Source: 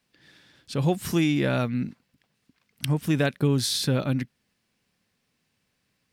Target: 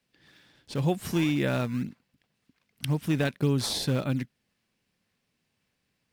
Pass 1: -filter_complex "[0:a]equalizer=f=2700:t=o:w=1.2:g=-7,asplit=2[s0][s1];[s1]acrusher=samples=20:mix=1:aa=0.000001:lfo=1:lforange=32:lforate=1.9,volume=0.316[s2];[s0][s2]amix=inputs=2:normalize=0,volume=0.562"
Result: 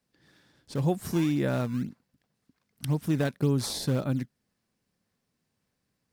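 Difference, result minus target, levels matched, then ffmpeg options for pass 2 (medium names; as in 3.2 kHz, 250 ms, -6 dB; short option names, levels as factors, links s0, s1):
2 kHz band -4.0 dB
-filter_complex "[0:a]equalizer=f=2700:t=o:w=1.2:g=2,asplit=2[s0][s1];[s1]acrusher=samples=20:mix=1:aa=0.000001:lfo=1:lforange=32:lforate=1.9,volume=0.316[s2];[s0][s2]amix=inputs=2:normalize=0,volume=0.562"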